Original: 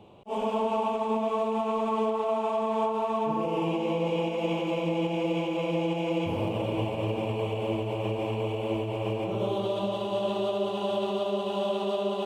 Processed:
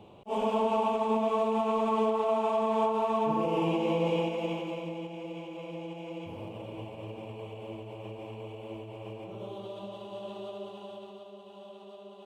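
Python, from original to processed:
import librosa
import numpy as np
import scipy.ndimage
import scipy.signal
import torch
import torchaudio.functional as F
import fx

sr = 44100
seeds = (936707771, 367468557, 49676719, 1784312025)

y = fx.gain(x, sr, db=fx.line((4.13, 0.0), (5.12, -12.0), (10.61, -12.0), (11.3, -19.5)))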